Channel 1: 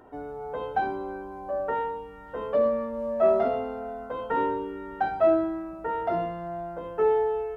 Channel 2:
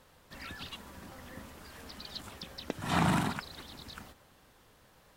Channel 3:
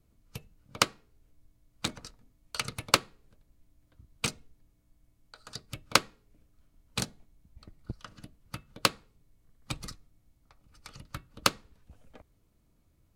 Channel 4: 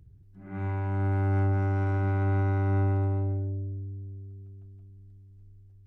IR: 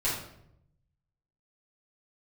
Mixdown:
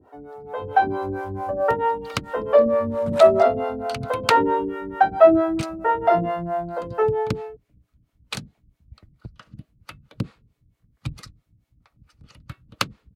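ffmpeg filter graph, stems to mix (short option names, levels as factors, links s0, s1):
-filter_complex "[0:a]dynaudnorm=f=110:g=13:m=3.98,volume=1.26[s0];[1:a]dynaudnorm=f=100:g=21:m=5.31,aeval=exprs='val(0)*pow(10,-21*if(lt(mod(0.98*n/s,1),2*abs(0.98)/1000),1-mod(0.98*n/s,1)/(2*abs(0.98)/1000),(mod(0.98*n/s,1)-2*abs(0.98)/1000)/(1-2*abs(0.98)/1000))/20)':c=same,volume=0.266[s1];[2:a]bass=f=250:g=13,treble=f=4000:g=-13,highshelf=f=2200:g=10,adelay=1350,volume=1.19[s2];[3:a]volume=0.447,asplit=3[s3][s4][s5];[s3]atrim=end=1.51,asetpts=PTS-STARTPTS,afade=t=out:st=1.506:d=0.004:c=hsin[s6];[s4]atrim=start=1.51:end=2.72,asetpts=PTS-STARTPTS,volume=0[s7];[s5]atrim=start=2.72,asetpts=PTS-STARTPTS,afade=t=in:d=0.004:c=hsin[s8];[s6][s7][s8]concat=n=3:v=0:a=1[s9];[s0][s1][s2][s9]amix=inputs=4:normalize=0,highpass=61,acrossover=split=400[s10][s11];[s10]aeval=exprs='val(0)*(1-1/2+1/2*cos(2*PI*4.5*n/s))':c=same[s12];[s11]aeval=exprs='val(0)*(1-1/2-1/2*cos(2*PI*4.5*n/s))':c=same[s13];[s12][s13]amix=inputs=2:normalize=0"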